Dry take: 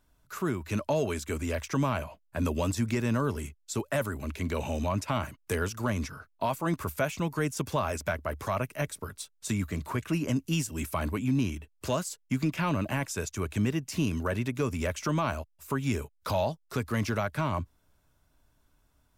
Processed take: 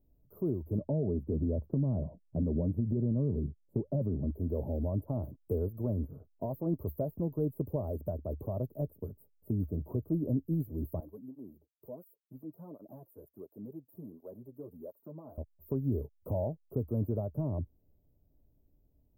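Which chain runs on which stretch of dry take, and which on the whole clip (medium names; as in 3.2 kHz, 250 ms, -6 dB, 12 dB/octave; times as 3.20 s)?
0.78–4.31 s: low-pass 1.8 kHz 6 dB/octave + peaking EQ 170 Hz +11.5 dB 1.3 oct + compression, threshold -24 dBFS
11.00–15.38 s: high-pass 1.3 kHz 6 dB/octave + cancelling through-zero flanger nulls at 1.4 Hz, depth 5.7 ms
whole clip: inverse Chebyshev band-stop 2.2–5.9 kHz, stop band 80 dB; dynamic bell 210 Hz, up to -4 dB, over -40 dBFS, Q 1.6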